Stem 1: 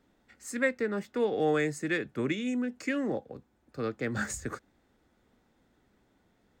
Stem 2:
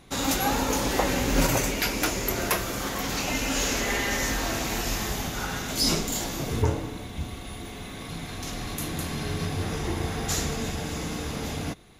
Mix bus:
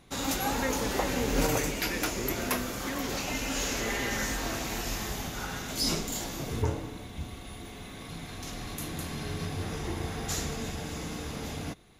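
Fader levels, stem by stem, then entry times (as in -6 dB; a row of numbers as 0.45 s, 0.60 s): -7.0 dB, -5.0 dB; 0.00 s, 0.00 s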